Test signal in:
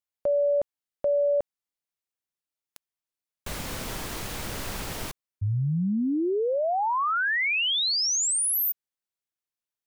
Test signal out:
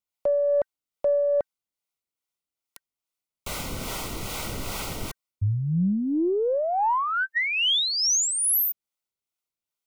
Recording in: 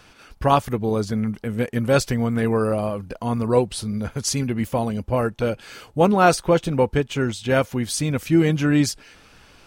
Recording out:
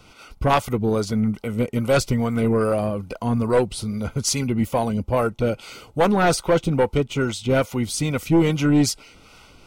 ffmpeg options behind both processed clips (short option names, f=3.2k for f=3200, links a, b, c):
-filter_complex "[0:a]acrossover=split=450[a][b];[a]aeval=exprs='val(0)*(1-0.5/2+0.5/2*cos(2*PI*2.4*n/s))':c=same[c];[b]aeval=exprs='val(0)*(1-0.5/2-0.5/2*cos(2*PI*2.4*n/s))':c=same[d];[c][d]amix=inputs=2:normalize=0,asuperstop=centerf=1700:order=20:qfactor=5.4,aeval=exprs='0.631*(cos(1*acos(clip(val(0)/0.631,-1,1)))-cos(1*PI/2))+0.158*(cos(2*acos(clip(val(0)/0.631,-1,1)))-cos(2*PI/2))+0.158*(cos(5*acos(clip(val(0)/0.631,-1,1)))-cos(5*PI/2))':c=same,volume=-3dB"